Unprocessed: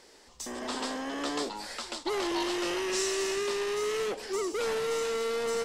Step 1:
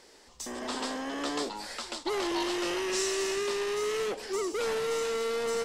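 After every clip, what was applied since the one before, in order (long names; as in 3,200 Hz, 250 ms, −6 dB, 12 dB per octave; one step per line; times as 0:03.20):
no processing that can be heard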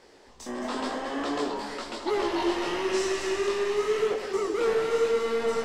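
high-shelf EQ 3,800 Hz −11.5 dB
chorus effect 0.95 Hz, delay 16.5 ms, depth 7.8 ms
delay that swaps between a low-pass and a high-pass 109 ms, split 900 Hz, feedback 74%, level −5.5 dB
level +6.5 dB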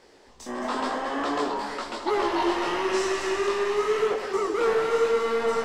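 dynamic equaliser 1,100 Hz, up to +6 dB, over −43 dBFS, Q 0.84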